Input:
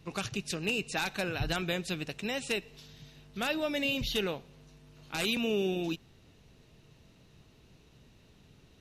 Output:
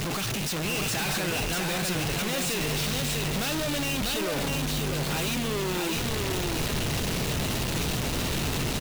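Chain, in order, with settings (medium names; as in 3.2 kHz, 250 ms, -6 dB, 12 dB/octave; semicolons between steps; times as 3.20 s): one-bit comparator; delay 645 ms -3.5 dB; trim +6 dB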